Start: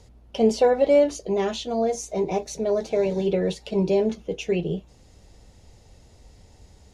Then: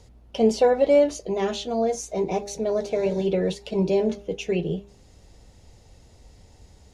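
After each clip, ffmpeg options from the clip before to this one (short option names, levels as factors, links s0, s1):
-af "bandreject=f=201.8:t=h:w=4,bandreject=f=403.6:t=h:w=4,bandreject=f=605.4:t=h:w=4,bandreject=f=807.2:t=h:w=4,bandreject=f=1009:t=h:w=4,bandreject=f=1210.8:t=h:w=4,bandreject=f=1412.6:t=h:w=4,bandreject=f=1614.4:t=h:w=4,bandreject=f=1816.2:t=h:w=4,bandreject=f=2018:t=h:w=4,bandreject=f=2219.8:t=h:w=4,bandreject=f=2421.6:t=h:w=4,bandreject=f=2623.4:t=h:w=4"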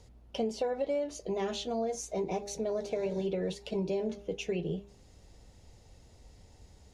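-af "acompressor=threshold=0.0631:ratio=6,volume=0.562"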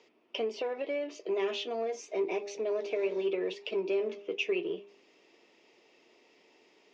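-filter_complex "[0:a]asplit=2[s0][s1];[s1]asoftclip=type=hard:threshold=0.0211,volume=0.282[s2];[s0][s2]amix=inputs=2:normalize=0,highpass=f=340:w=0.5412,highpass=f=340:w=1.3066,equalizer=f=360:t=q:w=4:g=3,equalizer=f=530:t=q:w=4:g=-8,equalizer=f=790:t=q:w=4:g=-9,equalizer=f=1500:t=q:w=4:g=-6,equalizer=f=2500:t=q:w=4:g=7,equalizer=f=4100:t=q:w=4:g=-9,lowpass=f=4600:w=0.5412,lowpass=f=4600:w=1.3066,volume=1.41"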